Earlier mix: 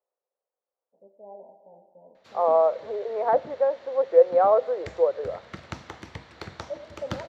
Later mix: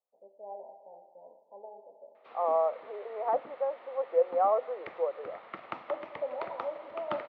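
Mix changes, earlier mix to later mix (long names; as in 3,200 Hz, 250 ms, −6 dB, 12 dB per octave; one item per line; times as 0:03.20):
first voice: entry −0.80 s
second voice −8.5 dB
master: add loudspeaker in its box 390–2,700 Hz, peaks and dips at 770 Hz +4 dB, 1,200 Hz +6 dB, 1,600 Hz −7 dB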